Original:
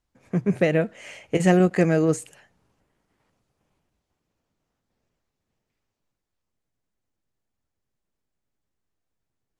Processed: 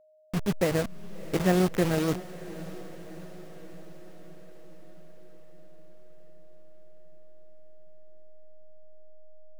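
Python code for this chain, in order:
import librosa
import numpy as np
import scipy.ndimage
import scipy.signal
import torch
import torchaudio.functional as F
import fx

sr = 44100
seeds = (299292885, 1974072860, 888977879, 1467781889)

y = fx.delta_hold(x, sr, step_db=-20.5)
y = y + 10.0 ** (-53.0 / 20.0) * np.sin(2.0 * np.pi * 620.0 * np.arange(len(y)) / sr)
y = fx.echo_diffused(y, sr, ms=652, feedback_pct=61, wet_db=-16)
y = F.gain(torch.from_numpy(y), -5.0).numpy()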